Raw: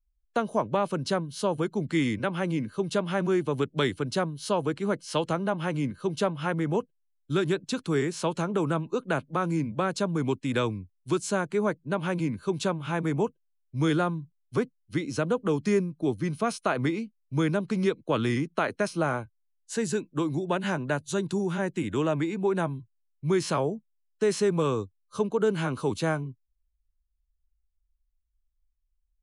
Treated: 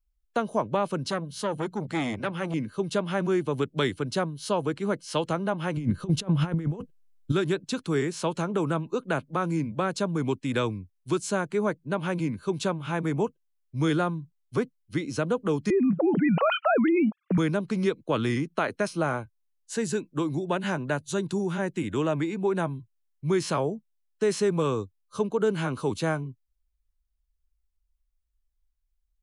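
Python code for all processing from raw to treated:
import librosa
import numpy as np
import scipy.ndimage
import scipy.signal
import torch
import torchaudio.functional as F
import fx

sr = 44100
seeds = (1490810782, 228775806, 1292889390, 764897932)

y = fx.chain(x, sr, fx.hum_notches(base_hz=60, count=3),
    fx.transformer_sat(knee_hz=800.0), at=(1.1, 2.54))
y = fx.chain(y, sr, fx.over_compress(threshold_db=-32.0, ratio=-0.5),
    fx.low_shelf(hz=290.0, db=10.5), at=(5.77, 7.32))
y = fx.chain(y, sr, fx.sine_speech(),
    fx.bandpass_q(hz=870.0, q=0.84),
    fx.env_flatten(amount_pct=100), at=(15.7, 17.38))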